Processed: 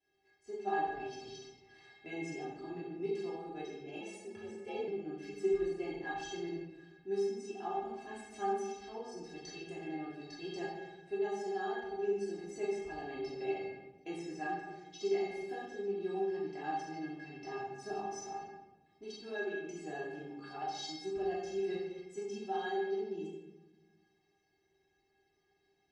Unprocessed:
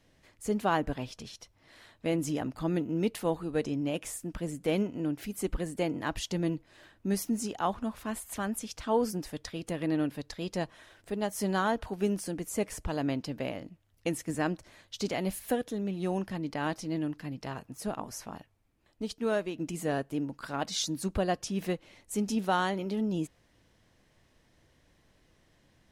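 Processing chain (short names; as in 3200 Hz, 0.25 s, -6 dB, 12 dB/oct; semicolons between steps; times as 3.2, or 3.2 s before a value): vocal rider within 4 dB 0.5 s; speaker cabinet 100–5900 Hz, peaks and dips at 770 Hz +5 dB, 1200 Hz -9 dB, 3600 Hz -3 dB; metallic resonator 390 Hz, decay 0.23 s, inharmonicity 0.008; shoebox room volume 570 m³, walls mixed, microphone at 3 m; 4.01–4.88 frequency shift +50 Hz; gain +2 dB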